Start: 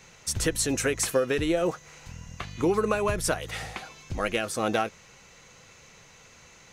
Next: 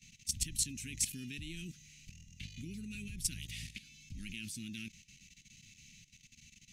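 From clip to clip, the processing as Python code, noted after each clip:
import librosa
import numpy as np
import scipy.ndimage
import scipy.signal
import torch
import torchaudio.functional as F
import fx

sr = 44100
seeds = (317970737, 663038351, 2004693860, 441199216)

y = scipy.signal.sosfilt(scipy.signal.ellip(3, 1.0, 50, [240.0, 2500.0], 'bandstop', fs=sr, output='sos'), x)
y = fx.level_steps(y, sr, step_db=14)
y = y * librosa.db_to_amplitude(-2.0)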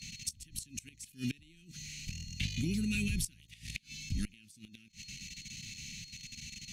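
y = x + 10.0 ** (-63.0 / 20.0) * np.sin(2.0 * np.pi * 4300.0 * np.arange(len(x)) / sr)
y = fx.gate_flip(y, sr, shuts_db=-33.0, range_db=-27)
y = fx.cheby_harmonics(y, sr, harmonics=(5, 7), levels_db=(-28, -37), full_scale_db=-31.5)
y = y * librosa.db_to_amplitude(11.0)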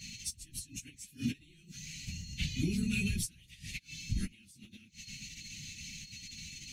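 y = fx.phase_scramble(x, sr, seeds[0], window_ms=50)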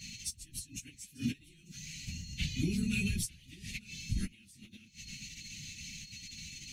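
y = x + 10.0 ** (-23.5 / 20.0) * np.pad(x, (int(893 * sr / 1000.0), 0))[:len(x)]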